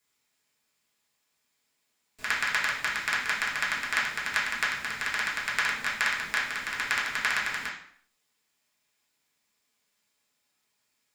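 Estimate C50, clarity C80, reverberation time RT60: 4.5 dB, 9.0 dB, 0.60 s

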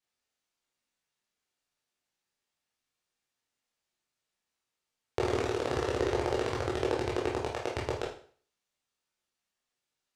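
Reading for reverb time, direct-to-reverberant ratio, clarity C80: 0.45 s, -4.0 dB, 10.5 dB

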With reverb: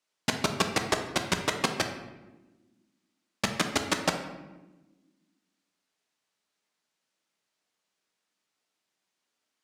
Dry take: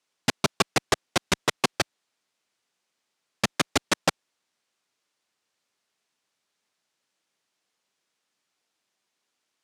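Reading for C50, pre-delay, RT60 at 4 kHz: 7.5 dB, 3 ms, 0.70 s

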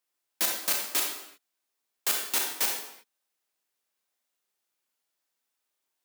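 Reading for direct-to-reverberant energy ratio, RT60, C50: 0.0 dB, not exponential, 2.5 dB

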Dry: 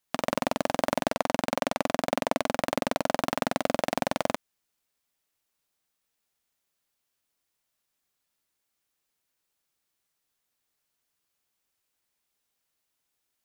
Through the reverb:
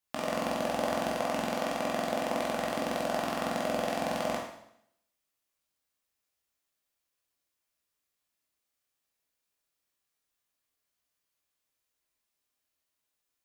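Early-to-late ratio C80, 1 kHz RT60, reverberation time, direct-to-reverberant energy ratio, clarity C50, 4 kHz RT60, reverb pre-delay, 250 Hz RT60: 7.0 dB, 0.75 s, 0.75 s, -2.5 dB, 3.5 dB, 0.70 s, 14 ms, 0.75 s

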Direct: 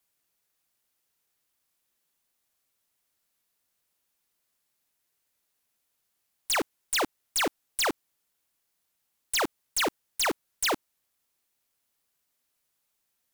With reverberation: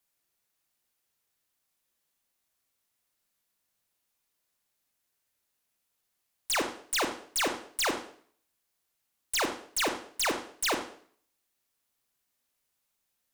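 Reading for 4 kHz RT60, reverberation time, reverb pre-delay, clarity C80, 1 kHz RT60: 0.50 s, 0.55 s, 20 ms, 12.0 dB, 0.50 s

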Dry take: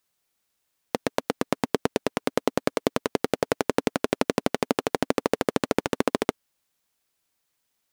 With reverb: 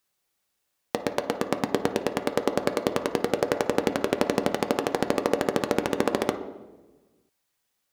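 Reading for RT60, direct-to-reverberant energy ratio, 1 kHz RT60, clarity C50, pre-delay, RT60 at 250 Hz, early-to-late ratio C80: 1.2 s, 5.0 dB, 1.0 s, 10.0 dB, 3 ms, 1.5 s, 12.5 dB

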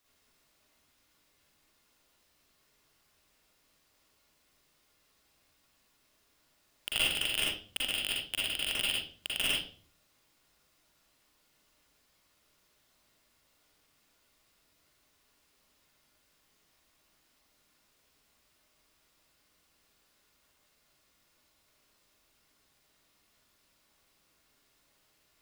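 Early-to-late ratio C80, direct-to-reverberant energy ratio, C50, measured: 7.5 dB, -5.5 dB, -0.5 dB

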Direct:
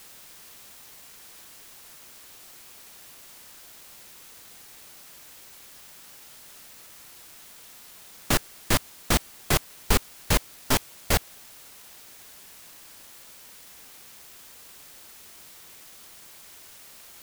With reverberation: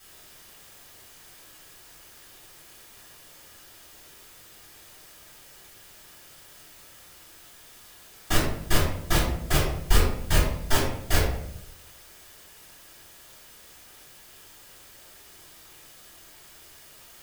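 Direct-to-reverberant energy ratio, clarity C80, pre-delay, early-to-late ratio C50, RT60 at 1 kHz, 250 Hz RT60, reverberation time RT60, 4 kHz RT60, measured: -10.5 dB, 6.0 dB, 3 ms, 2.5 dB, 0.65 s, 0.90 s, 0.75 s, 0.45 s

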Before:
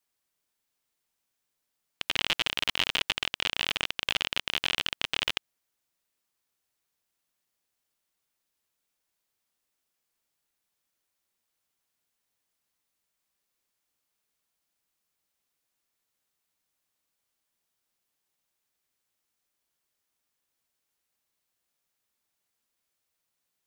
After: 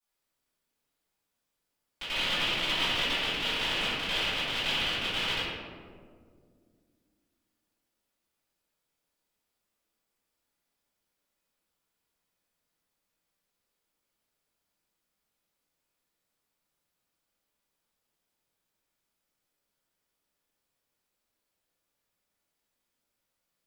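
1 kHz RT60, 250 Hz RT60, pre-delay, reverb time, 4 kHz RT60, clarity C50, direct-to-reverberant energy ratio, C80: 1.6 s, 3.2 s, 3 ms, 2.0 s, 0.85 s, -3.0 dB, -17.0 dB, 0.0 dB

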